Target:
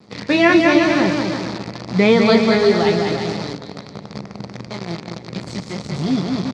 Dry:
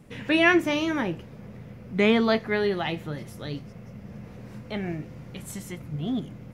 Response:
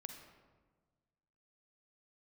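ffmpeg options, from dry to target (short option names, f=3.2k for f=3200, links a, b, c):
-filter_complex "[0:a]asplit=2[a][b];[b]adelay=640,lowpass=f=3.3k:p=1,volume=-19.5dB,asplit=2[c][d];[d]adelay=640,lowpass=f=3.3k:p=1,volume=0.38,asplit=2[e][f];[f]adelay=640,lowpass=f=3.3k:p=1,volume=0.38[g];[a][c][e][g]amix=inputs=4:normalize=0,asettb=1/sr,asplit=3[h][i][j];[h]atrim=end=3.204[k];[i]atrim=start=3.2:end=5.25,asetpts=PTS-STARTPTS,afade=t=in:d=0.004:c=qsin,afade=t=out:st=2.046:d=0.004:c=qsin,acompressor=threshold=-38dB:ratio=2.5[l];[j]atrim=start=5.246[m];[k][l]acrossfade=d=0.004:c1=hsin:c2=qsin[n];[n][m]acrossfade=d=0.004:c1=qsin:c2=hsin,flanger=delay=9.2:depth=9:regen=39:speed=0.31:shape=triangular,aecho=1:1:200|350|462.5|546.9|610.2:0.631|0.398|0.251|0.158|0.1,acrusher=bits=7:dc=4:mix=0:aa=0.000001,highpass=100,equalizer=f=180:t=q:w=4:g=3,equalizer=f=1.6k:t=q:w=4:g=-6,equalizer=f=2.9k:t=q:w=4:g=-9,equalizer=f=4.5k:t=q:w=4:g=7,lowpass=f=5.6k:w=0.5412,lowpass=f=5.6k:w=1.3066,bandreject=f=50:t=h:w=6,bandreject=f=100:t=h:w=6,bandreject=f=150:t=h:w=6,alimiter=level_in=13dB:limit=-1dB:release=50:level=0:latency=1,volume=-1dB"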